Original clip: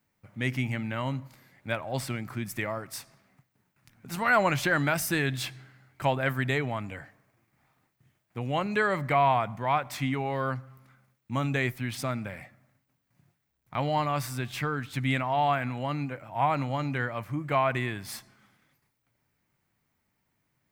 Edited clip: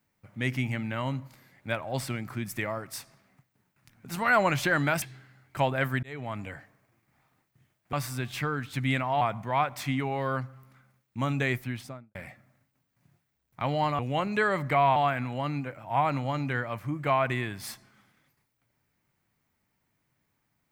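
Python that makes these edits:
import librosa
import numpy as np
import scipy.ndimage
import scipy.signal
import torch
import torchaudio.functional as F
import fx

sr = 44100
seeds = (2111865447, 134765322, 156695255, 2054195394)

y = fx.studio_fade_out(x, sr, start_s=11.72, length_s=0.57)
y = fx.edit(y, sr, fx.cut(start_s=5.02, length_s=0.45),
    fx.fade_in_span(start_s=6.48, length_s=0.37),
    fx.swap(start_s=8.38, length_s=0.97, other_s=14.13, other_length_s=1.28), tone=tone)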